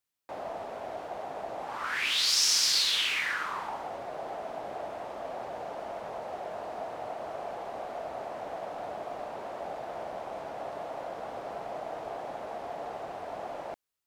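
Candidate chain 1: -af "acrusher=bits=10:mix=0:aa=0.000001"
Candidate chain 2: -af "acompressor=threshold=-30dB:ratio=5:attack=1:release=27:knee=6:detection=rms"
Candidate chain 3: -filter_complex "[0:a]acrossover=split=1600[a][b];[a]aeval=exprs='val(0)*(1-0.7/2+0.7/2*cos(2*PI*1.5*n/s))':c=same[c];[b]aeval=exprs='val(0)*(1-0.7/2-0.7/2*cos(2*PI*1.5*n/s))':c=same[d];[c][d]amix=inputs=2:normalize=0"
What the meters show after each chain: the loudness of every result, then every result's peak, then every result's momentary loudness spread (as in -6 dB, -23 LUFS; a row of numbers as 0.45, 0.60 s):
-32.5, -37.0, -35.5 LUFS; -13.0, -23.0, -14.0 dBFS; 15, 9, 17 LU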